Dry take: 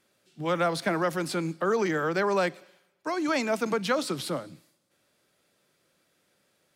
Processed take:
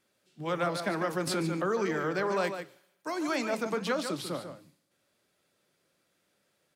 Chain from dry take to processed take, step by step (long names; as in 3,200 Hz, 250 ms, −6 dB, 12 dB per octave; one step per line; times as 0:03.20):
0:02.44–0:03.36: high-shelf EQ 8,200 Hz +11.5 dB
slap from a distant wall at 25 metres, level −8 dB
flanger 2 Hz, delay 6.6 ms, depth 6.2 ms, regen −80%
0:01.27–0:01.71: envelope flattener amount 70%